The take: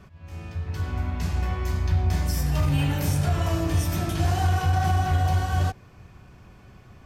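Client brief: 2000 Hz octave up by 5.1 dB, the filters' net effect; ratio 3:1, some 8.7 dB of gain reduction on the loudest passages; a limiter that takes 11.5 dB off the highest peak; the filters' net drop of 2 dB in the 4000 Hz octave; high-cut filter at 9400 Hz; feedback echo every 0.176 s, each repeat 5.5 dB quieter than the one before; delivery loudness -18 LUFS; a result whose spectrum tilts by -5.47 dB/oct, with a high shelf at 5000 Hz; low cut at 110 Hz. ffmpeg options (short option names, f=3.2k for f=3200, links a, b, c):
-af "highpass=110,lowpass=9.4k,equalizer=f=2k:t=o:g=8.5,equalizer=f=4k:t=o:g=-8.5,highshelf=f=5k:g=3.5,acompressor=threshold=-33dB:ratio=3,alimiter=level_in=10dB:limit=-24dB:level=0:latency=1,volume=-10dB,aecho=1:1:176|352|528|704|880|1056|1232:0.531|0.281|0.149|0.079|0.0419|0.0222|0.0118,volume=23.5dB"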